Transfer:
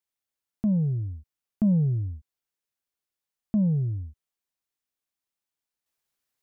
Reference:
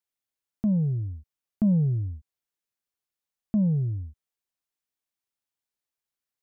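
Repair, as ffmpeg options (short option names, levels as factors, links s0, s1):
-af "asetnsamples=n=441:p=0,asendcmd='5.86 volume volume -6.5dB',volume=1"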